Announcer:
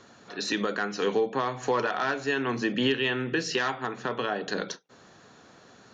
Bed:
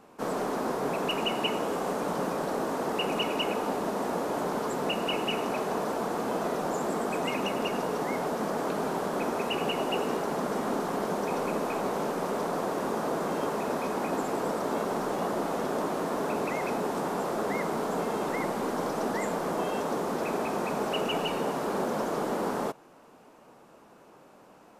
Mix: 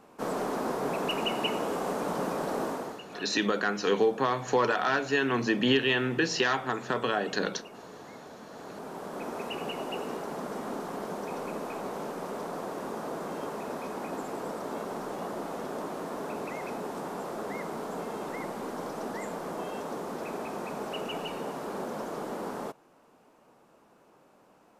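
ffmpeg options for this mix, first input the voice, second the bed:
-filter_complex "[0:a]adelay=2850,volume=1dB[a];[1:a]volume=10dB,afade=t=out:st=2.65:d=0.36:silence=0.158489,afade=t=in:st=8.49:d=0.9:silence=0.281838[b];[a][b]amix=inputs=2:normalize=0"

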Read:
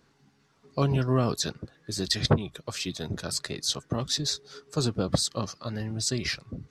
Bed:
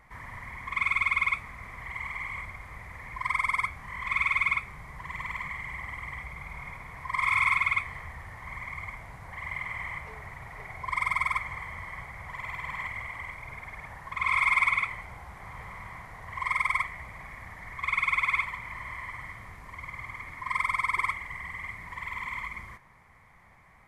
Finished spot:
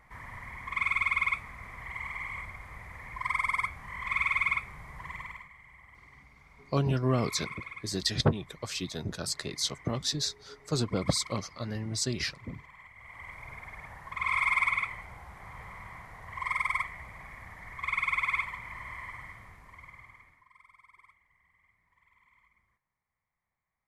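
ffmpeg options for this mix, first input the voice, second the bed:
-filter_complex "[0:a]adelay=5950,volume=-2.5dB[a];[1:a]volume=12dB,afade=t=out:st=5.05:d=0.43:silence=0.177828,afade=t=in:st=12.96:d=0.46:silence=0.199526,afade=t=out:st=19.05:d=1.44:silence=0.0421697[b];[a][b]amix=inputs=2:normalize=0"

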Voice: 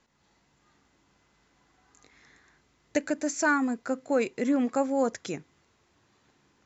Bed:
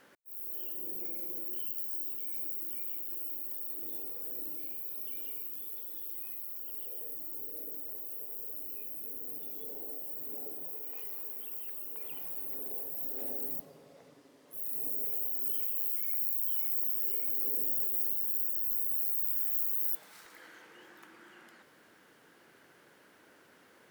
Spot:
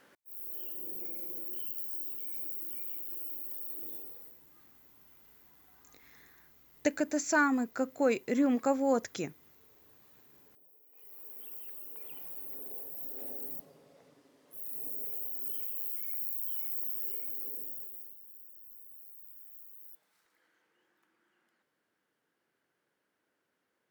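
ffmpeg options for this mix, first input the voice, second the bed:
-filter_complex "[0:a]adelay=3900,volume=-2dB[a];[1:a]volume=15.5dB,afade=t=out:st=3.83:d=0.56:silence=0.105925,afade=t=in:st=10.91:d=0.54:silence=0.141254,afade=t=out:st=17.05:d=1.12:silence=0.158489[b];[a][b]amix=inputs=2:normalize=0"

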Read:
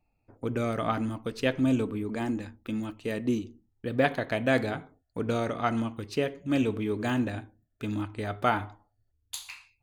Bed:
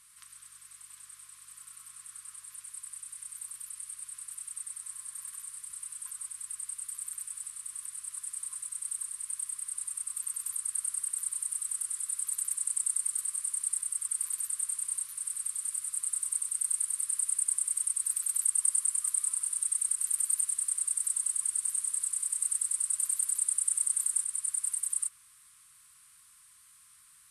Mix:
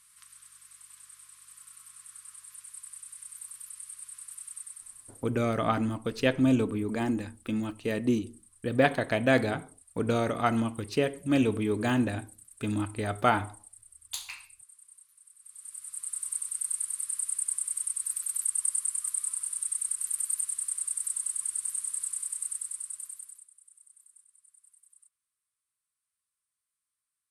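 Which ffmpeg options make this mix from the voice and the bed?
-filter_complex "[0:a]adelay=4800,volume=1.5dB[a];[1:a]volume=18dB,afade=t=out:st=4.53:d=0.82:silence=0.105925,afade=t=in:st=15.4:d=0.9:silence=0.105925,afade=t=out:st=22.11:d=1.37:silence=0.0446684[b];[a][b]amix=inputs=2:normalize=0"

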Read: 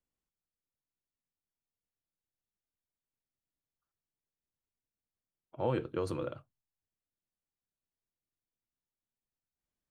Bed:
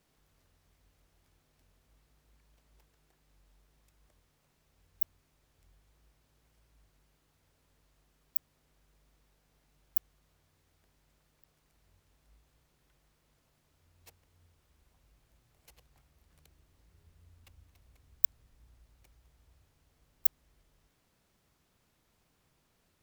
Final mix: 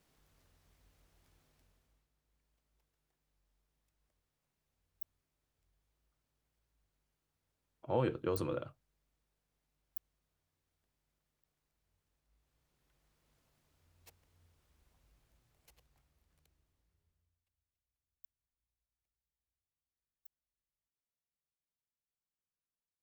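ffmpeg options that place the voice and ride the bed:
-filter_complex "[0:a]adelay=2300,volume=-0.5dB[a];[1:a]volume=10dB,afade=t=out:st=1.44:d=0.65:silence=0.211349,afade=t=in:st=12.22:d=1.12:silence=0.298538,afade=t=out:st=15.07:d=2.37:silence=0.0334965[b];[a][b]amix=inputs=2:normalize=0"

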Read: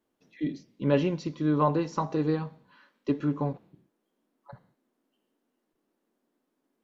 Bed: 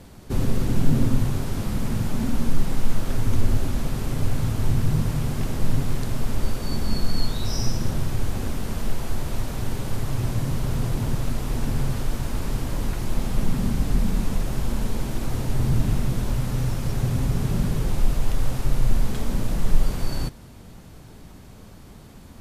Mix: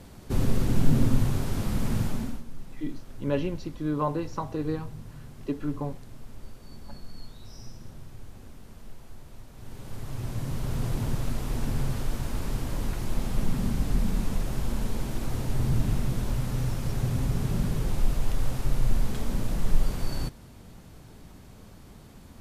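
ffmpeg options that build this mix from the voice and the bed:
-filter_complex "[0:a]adelay=2400,volume=-3.5dB[a];[1:a]volume=13.5dB,afade=t=out:st=2.01:d=0.42:silence=0.133352,afade=t=in:st=9.53:d=1.38:silence=0.16788[b];[a][b]amix=inputs=2:normalize=0"

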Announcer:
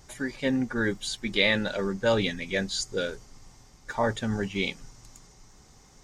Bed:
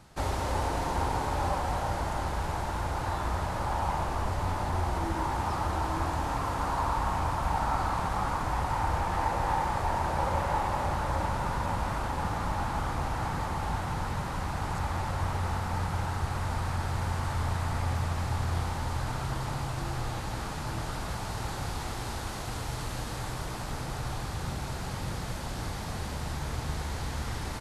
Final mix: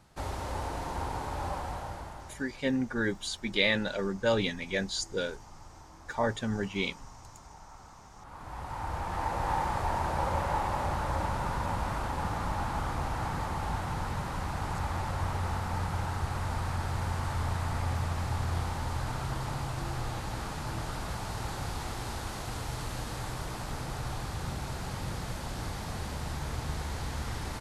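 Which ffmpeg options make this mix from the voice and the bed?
-filter_complex "[0:a]adelay=2200,volume=-3dB[a];[1:a]volume=16dB,afade=t=out:st=1.59:d=0.87:silence=0.133352,afade=t=in:st=8.19:d=1.38:silence=0.0841395[b];[a][b]amix=inputs=2:normalize=0"

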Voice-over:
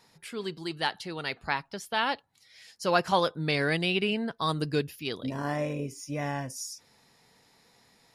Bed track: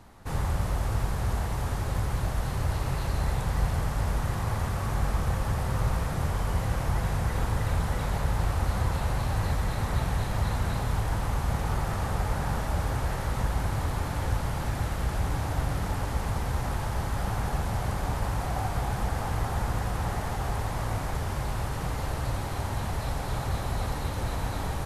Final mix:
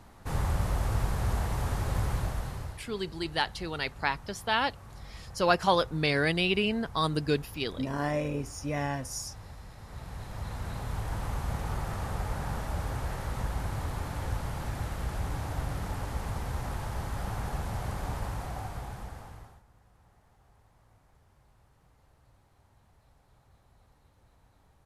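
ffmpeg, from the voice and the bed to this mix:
-filter_complex "[0:a]adelay=2550,volume=0.5dB[a];[1:a]volume=13dB,afade=t=out:st=2.09:d=0.73:silence=0.125893,afade=t=in:st=9.82:d=1.43:silence=0.199526,afade=t=out:st=18.15:d=1.47:silence=0.0398107[b];[a][b]amix=inputs=2:normalize=0"

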